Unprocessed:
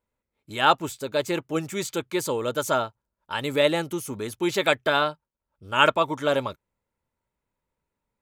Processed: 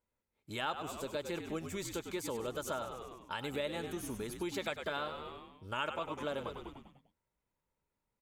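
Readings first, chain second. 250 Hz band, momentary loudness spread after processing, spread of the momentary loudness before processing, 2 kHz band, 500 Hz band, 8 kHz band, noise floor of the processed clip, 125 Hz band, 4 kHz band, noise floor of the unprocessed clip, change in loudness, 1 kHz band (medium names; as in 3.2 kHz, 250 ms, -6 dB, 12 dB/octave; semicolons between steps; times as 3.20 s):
-12.0 dB, 8 LU, 11 LU, -15.5 dB, -14.0 dB, -11.0 dB, under -85 dBFS, -11.5 dB, -14.5 dB, -85 dBFS, -14.5 dB, -15.5 dB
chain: on a send: frequency-shifting echo 99 ms, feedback 52%, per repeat -67 Hz, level -9.5 dB; on the sum: compression 3:1, threshold -33 dBFS, peak gain reduction 15 dB; trim -5 dB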